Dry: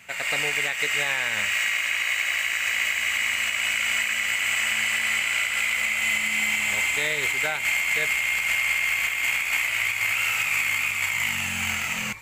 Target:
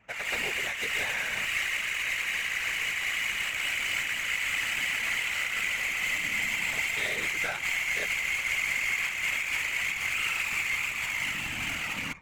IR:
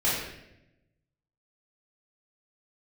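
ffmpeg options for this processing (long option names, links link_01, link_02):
-af "adynamicsmooth=sensitivity=6.5:basefreq=930,aeval=exprs='0.2*(cos(1*acos(clip(val(0)/0.2,-1,1)))-cos(1*PI/2))+0.00708*(cos(4*acos(clip(val(0)/0.2,-1,1)))-cos(4*PI/2))+0.00891*(cos(5*acos(clip(val(0)/0.2,-1,1)))-cos(5*PI/2))':channel_layout=same,afftfilt=real='hypot(re,im)*cos(2*PI*random(0))':imag='hypot(re,im)*sin(2*PI*random(1))':win_size=512:overlap=0.75"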